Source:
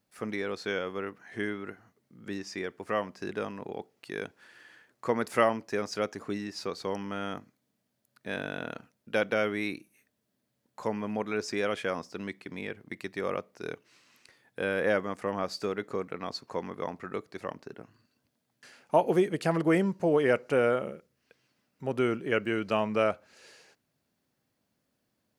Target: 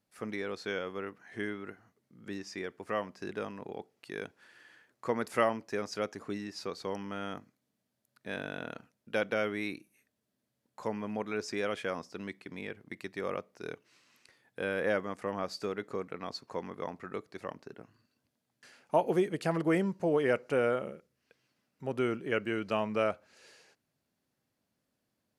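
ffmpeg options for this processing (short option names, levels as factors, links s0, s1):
-af "aresample=32000,aresample=44100,volume=0.668"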